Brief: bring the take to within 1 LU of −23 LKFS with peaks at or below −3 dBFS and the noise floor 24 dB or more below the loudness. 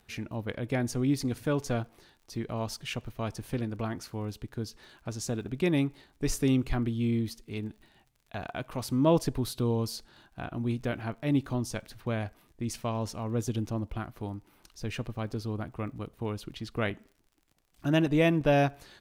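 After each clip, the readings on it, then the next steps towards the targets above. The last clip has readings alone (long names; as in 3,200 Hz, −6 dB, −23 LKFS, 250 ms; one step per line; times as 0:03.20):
crackle rate 43 per second; integrated loudness −31.5 LKFS; sample peak −13.0 dBFS; target loudness −23.0 LKFS
→ click removal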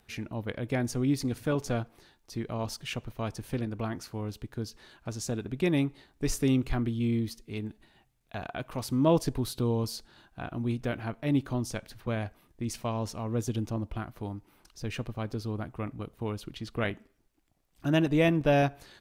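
crackle rate 0.26 per second; integrated loudness −31.5 LKFS; sample peak −13.0 dBFS; target loudness −23.0 LKFS
→ level +8.5 dB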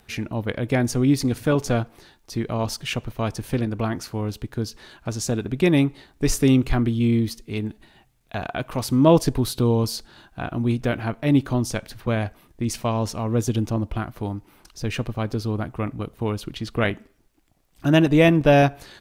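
integrated loudness −23.0 LKFS; sample peak −4.5 dBFS; background noise floor −60 dBFS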